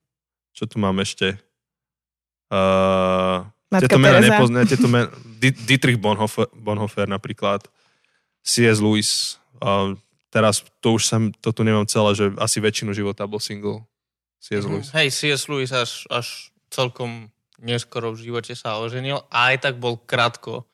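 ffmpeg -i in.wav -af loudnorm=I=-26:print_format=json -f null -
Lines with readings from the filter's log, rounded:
"input_i" : "-20.0",
"input_tp" : "-3.7",
"input_lra" : "7.1",
"input_thresh" : "-30.5",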